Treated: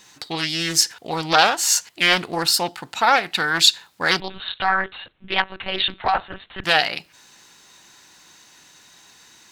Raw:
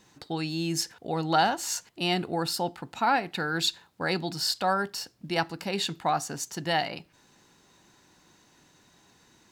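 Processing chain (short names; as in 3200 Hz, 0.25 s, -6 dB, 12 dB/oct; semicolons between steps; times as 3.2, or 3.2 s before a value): 4.2–6.64 monotone LPC vocoder at 8 kHz 190 Hz; tilt shelf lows -7.5 dB, about 860 Hz; Doppler distortion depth 0.52 ms; gain +6.5 dB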